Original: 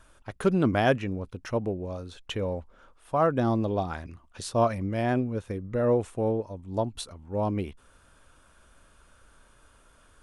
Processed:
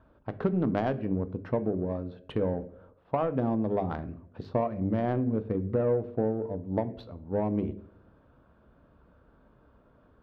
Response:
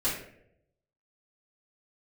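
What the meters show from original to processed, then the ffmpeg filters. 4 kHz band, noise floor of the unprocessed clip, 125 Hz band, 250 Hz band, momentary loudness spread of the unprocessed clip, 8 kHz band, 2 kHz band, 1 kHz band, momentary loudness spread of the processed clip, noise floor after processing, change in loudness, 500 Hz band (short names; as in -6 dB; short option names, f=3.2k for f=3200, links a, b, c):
under -10 dB, -59 dBFS, -2.0 dB, -0.5 dB, 14 LU, under -30 dB, -9.5 dB, -5.0 dB, 9 LU, -62 dBFS, -2.0 dB, -2.0 dB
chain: -filter_complex "[0:a]highpass=82,bandreject=f=50:t=h:w=6,bandreject=f=100:t=h:w=6,bandreject=f=150:t=h:w=6,bandreject=f=200:t=h:w=6,bandreject=f=250:t=h:w=6,bandreject=f=300:t=h:w=6,bandreject=f=350:t=h:w=6,bandreject=f=400:t=h:w=6,bandreject=f=450:t=h:w=6,acompressor=threshold=-29dB:ratio=12,lowpass=f=4.4k:t=q:w=2.5,adynamicsmooth=sensitivity=0.5:basefreq=640,asplit=2[a][b];[1:a]atrim=start_sample=2205[c];[b][c]afir=irnorm=-1:irlink=0,volume=-19.5dB[d];[a][d]amix=inputs=2:normalize=0,volume=6.5dB"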